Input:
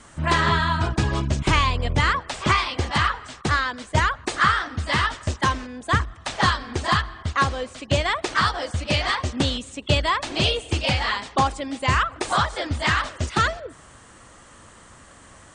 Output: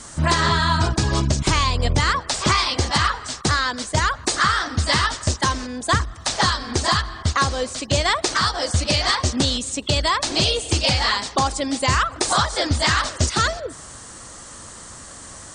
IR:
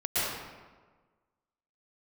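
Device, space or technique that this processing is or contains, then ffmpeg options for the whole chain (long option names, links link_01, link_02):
over-bright horn tweeter: -af "highshelf=frequency=3700:width_type=q:width=1.5:gain=7,alimiter=limit=-14dB:level=0:latency=1:release=238,volume=6dB"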